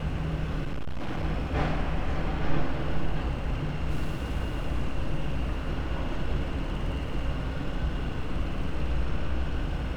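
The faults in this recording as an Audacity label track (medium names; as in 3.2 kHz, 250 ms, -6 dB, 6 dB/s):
0.630000	1.250000	clipped -26.5 dBFS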